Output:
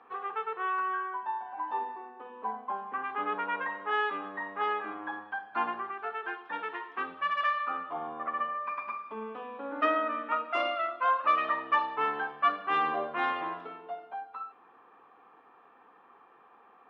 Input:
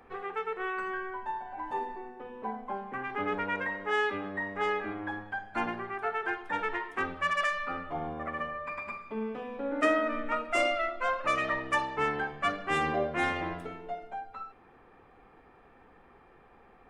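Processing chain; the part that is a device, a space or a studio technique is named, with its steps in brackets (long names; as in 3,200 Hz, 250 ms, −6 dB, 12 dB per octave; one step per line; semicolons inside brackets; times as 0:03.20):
0:05.90–0:07.45: dynamic equaliser 1,000 Hz, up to −6 dB, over −44 dBFS, Q 0.94
phone earpiece (loudspeaker in its box 350–3,700 Hz, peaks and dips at 380 Hz −4 dB, 570 Hz −5 dB, 1,100 Hz +8 dB, 2,100 Hz −7 dB)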